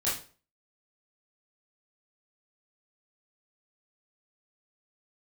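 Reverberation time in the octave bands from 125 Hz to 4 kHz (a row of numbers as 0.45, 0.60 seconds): 0.45, 0.40, 0.45, 0.35, 0.35, 0.35 seconds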